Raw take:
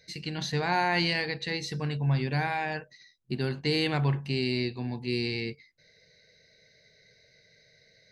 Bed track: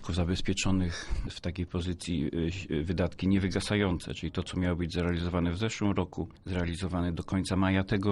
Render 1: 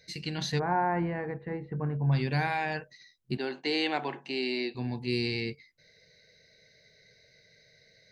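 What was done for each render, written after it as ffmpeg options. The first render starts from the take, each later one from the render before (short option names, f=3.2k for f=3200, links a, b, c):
-filter_complex "[0:a]asplit=3[a][b][c];[a]afade=t=out:st=0.58:d=0.02[d];[b]lowpass=f=1.4k:w=0.5412,lowpass=f=1.4k:w=1.3066,afade=t=in:st=0.58:d=0.02,afade=t=out:st=2.11:d=0.02[e];[c]afade=t=in:st=2.11:d=0.02[f];[d][e][f]amix=inputs=3:normalize=0,asettb=1/sr,asplit=3[g][h][i];[g]atrim=end=3.374[j];[h]atrim=start=3.37:end=4.75,asetpts=PTS-STARTPTS,afade=t=in:d=0.004:c=qsin,afade=t=out:st=1.376:d=0.004:c=qsin,highpass=f=270:w=0.5412,highpass=f=270:w=1.3066,equalizer=f=480:t=q:w=4:g=-3,equalizer=f=790:t=q:w=4:g=5,equalizer=f=1.2k:t=q:w=4:g=-3,equalizer=f=4.9k:t=q:w=4:g=-5,lowpass=f=7.1k:w=0.5412,lowpass=f=7.1k:w=1.3066[k];[i]atrim=start=4.746[l];[j][k]acrossfade=d=0.004:c1=hsin:c2=qsin[m];[m][l]acrossfade=d=0.004:c1=qsin:c2=hsin"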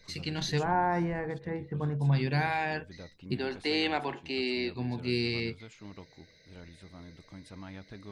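-filter_complex "[1:a]volume=-18.5dB[a];[0:a][a]amix=inputs=2:normalize=0"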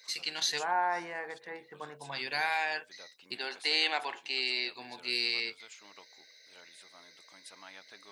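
-af "highpass=720,highshelf=f=3.8k:g=9.5"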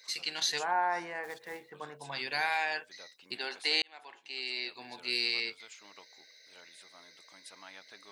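-filter_complex "[0:a]asplit=3[a][b][c];[a]afade=t=out:st=1.23:d=0.02[d];[b]acrusher=bits=3:mode=log:mix=0:aa=0.000001,afade=t=in:st=1.23:d=0.02,afade=t=out:st=1.69:d=0.02[e];[c]afade=t=in:st=1.69:d=0.02[f];[d][e][f]amix=inputs=3:normalize=0,asplit=2[g][h];[g]atrim=end=3.82,asetpts=PTS-STARTPTS,afade=t=out:st=3.816:d=0.004:c=hsin[i];[h]atrim=start=3.82,asetpts=PTS-STARTPTS,afade=t=in:d=1.19[j];[i][j]concat=n=2:v=0:a=1"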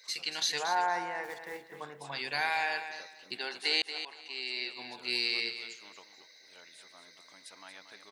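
-af "aecho=1:1:231|462|693:0.316|0.0696|0.0153"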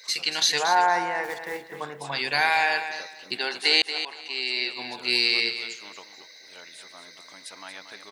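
-af "volume=9dB"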